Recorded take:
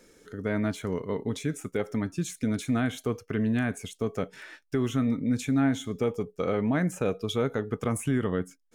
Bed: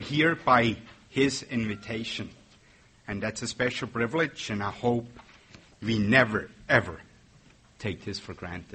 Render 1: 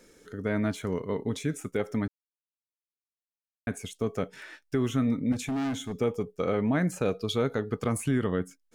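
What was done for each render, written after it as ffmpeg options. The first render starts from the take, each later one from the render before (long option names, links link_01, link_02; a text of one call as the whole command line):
ffmpeg -i in.wav -filter_complex "[0:a]asettb=1/sr,asplit=3[link_01][link_02][link_03];[link_01]atrim=end=5.324[link_04];[link_02]atrim=start=5.32:end=5.99,asetpts=PTS-STARTPTS,afade=type=in:duration=0.004:curve=qsin,afade=type=out:start_time=0.666:duration=0.004:curve=qsin,asoftclip=type=hard:threshold=-27.5dB[link_05];[link_03]atrim=start=5.986[link_06];[link_04][link_05]acrossfade=duration=0.004:curve1=hsin:curve2=qsin[link_07];[link_07][link_06]acrossfade=duration=0.004:curve1=qsin:curve2=hsin,asettb=1/sr,asplit=3[link_08][link_09][link_10];[link_08]atrim=end=6.824[link_11];[link_09]atrim=start=6.82:end=8.36,asetpts=PTS-STARTPTS,afade=type=in:duration=0.004:curve=qsin,afade=type=out:start_time=1.536:duration=0.004:curve=qsin,equalizer=frequency=4400:width=5.8:gain=12[link_12];[link_10]atrim=start=8.356[link_13];[link_11][link_12]acrossfade=duration=0.004:curve1=hsin:curve2=qsin[link_14];[link_14][link_13]acrossfade=duration=0.004:curve1=qsin:curve2=hsin,asplit=3[link_15][link_16][link_17];[link_15]atrim=end=2.08,asetpts=PTS-STARTPTS,afade=type=out:start_time=2.076:duration=0.004:curve=hsin[link_18];[link_16]atrim=start=2.08:end=3.67,asetpts=PTS-STARTPTS,volume=0[link_19];[link_17]atrim=start=3.67,asetpts=PTS-STARTPTS,afade=type=in:duration=0.004:curve=hsin[link_20];[link_18][link_19][link_20]concat=n=3:v=0:a=1" out.wav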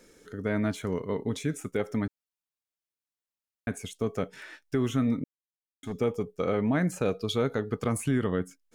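ffmpeg -i in.wav -filter_complex "[0:a]asplit=3[link_01][link_02][link_03];[link_01]atrim=end=5.24,asetpts=PTS-STARTPTS,afade=type=out:start_time=5.236:duration=0.004:curve=hsin[link_04];[link_02]atrim=start=5.24:end=5.83,asetpts=PTS-STARTPTS,volume=0[link_05];[link_03]atrim=start=5.83,asetpts=PTS-STARTPTS,afade=type=in:duration=0.004:curve=hsin[link_06];[link_04][link_05][link_06]concat=n=3:v=0:a=1" out.wav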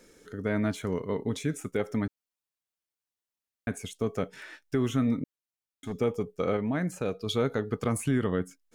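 ffmpeg -i in.wav -filter_complex "[0:a]asplit=3[link_01][link_02][link_03];[link_01]atrim=end=6.572[link_04];[link_02]atrim=start=6.568:end=7.262,asetpts=PTS-STARTPTS,volume=-3.5dB[link_05];[link_03]atrim=start=7.258[link_06];[link_04][link_05]acrossfade=duration=0.004:curve1=hsin:curve2=hsin[link_07];[link_07][link_06]acrossfade=duration=0.004:curve1=hsin:curve2=hsin" out.wav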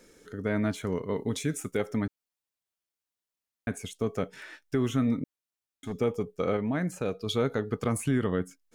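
ffmpeg -i in.wav -filter_complex "[0:a]asettb=1/sr,asplit=3[link_01][link_02][link_03];[link_01]atrim=end=1.154[link_04];[link_02]atrim=start=1.15:end=1.86,asetpts=PTS-STARTPTS,afade=type=in:duration=0.004:curve=qsin,afade=type=out:start_time=0.706:duration=0.004:curve=qsin,highshelf=frequency=4100:gain=6[link_05];[link_03]atrim=start=1.856[link_06];[link_04][link_05]acrossfade=duration=0.004:curve1=hsin:curve2=qsin[link_07];[link_07][link_06]acrossfade=duration=0.004:curve1=qsin:curve2=hsin" out.wav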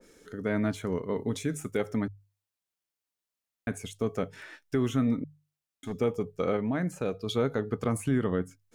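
ffmpeg -i in.wav -af "bandreject=frequency=50:width_type=h:width=6,bandreject=frequency=100:width_type=h:width=6,bandreject=frequency=150:width_type=h:width=6,adynamicequalizer=threshold=0.00562:dfrequency=1700:dqfactor=0.7:tfrequency=1700:tqfactor=0.7:attack=5:release=100:ratio=0.375:range=2:mode=cutabove:tftype=highshelf" out.wav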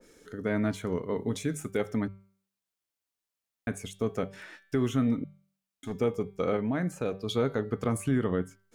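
ffmpeg -i in.wav -af "bandreject=frequency=193.9:width_type=h:width=4,bandreject=frequency=387.8:width_type=h:width=4,bandreject=frequency=581.7:width_type=h:width=4,bandreject=frequency=775.6:width_type=h:width=4,bandreject=frequency=969.5:width_type=h:width=4,bandreject=frequency=1163.4:width_type=h:width=4,bandreject=frequency=1357.3:width_type=h:width=4,bandreject=frequency=1551.2:width_type=h:width=4,bandreject=frequency=1745.1:width_type=h:width=4,bandreject=frequency=1939:width_type=h:width=4,bandreject=frequency=2132.9:width_type=h:width=4,bandreject=frequency=2326.8:width_type=h:width=4,bandreject=frequency=2520.7:width_type=h:width=4,bandreject=frequency=2714.6:width_type=h:width=4,bandreject=frequency=2908.5:width_type=h:width=4,bandreject=frequency=3102.4:width_type=h:width=4,bandreject=frequency=3296.3:width_type=h:width=4,bandreject=frequency=3490.2:width_type=h:width=4,bandreject=frequency=3684.1:width_type=h:width=4,bandreject=frequency=3878:width_type=h:width=4,bandreject=frequency=4071.9:width_type=h:width=4,bandreject=frequency=4265.8:width_type=h:width=4,bandreject=frequency=4459.7:width_type=h:width=4,bandreject=frequency=4653.6:width_type=h:width=4,bandreject=frequency=4847.5:width_type=h:width=4" out.wav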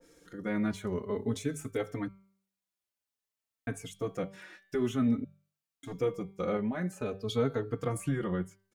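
ffmpeg -i in.wav -filter_complex "[0:a]asplit=2[link_01][link_02];[link_02]adelay=3.9,afreqshift=0.51[link_03];[link_01][link_03]amix=inputs=2:normalize=1" out.wav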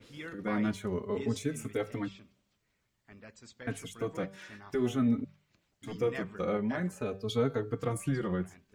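ffmpeg -i in.wav -i bed.wav -filter_complex "[1:a]volume=-20.5dB[link_01];[0:a][link_01]amix=inputs=2:normalize=0" out.wav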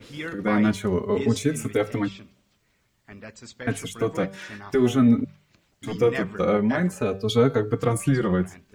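ffmpeg -i in.wav -af "volume=10dB" out.wav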